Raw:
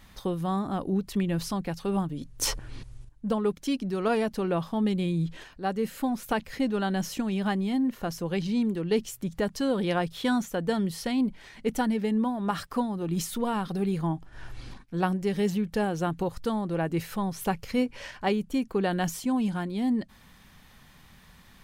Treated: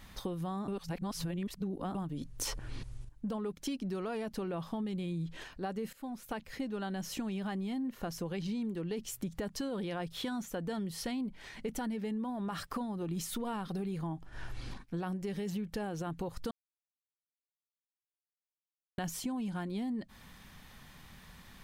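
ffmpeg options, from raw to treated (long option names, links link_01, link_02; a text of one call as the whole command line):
ffmpeg -i in.wav -filter_complex "[0:a]asplit=6[link_01][link_02][link_03][link_04][link_05][link_06];[link_01]atrim=end=0.682[link_07];[link_02]atrim=start=0.678:end=1.952,asetpts=PTS-STARTPTS,areverse[link_08];[link_03]atrim=start=1.948:end=5.93,asetpts=PTS-STARTPTS,afade=type=out:start_time=3.978:duration=0.004:curve=hsin:silence=0.133352[link_09];[link_04]atrim=start=5.93:end=16.51,asetpts=PTS-STARTPTS,afade=type=in:duration=1.41:silence=0.133352,afade=type=out:start_time=10.576:duration=0.004:curve=hsin[link_10];[link_05]atrim=start=16.51:end=18.98,asetpts=PTS-STARTPTS,volume=0[link_11];[link_06]atrim=start=18.98,asetpts=PTS-STARTPTS,afade=type=in:duration=0.004:curve=hsin[link_12];[link_07][link_08]acrossfade=duration=0.004:curve1=hsin:curve2=hsin[link_13];[link_09][link_10][link_11][link_12]concat=n=4:v=0:a=1[link_14];[link_13][link_14]acrossfade=duration=0.004:curve1=hsin:curve2=hsin,alimiter=limit=-21dB:level=0:latency=1:release=17,acompressor=threshold=-34dB:ratio=6" out.wav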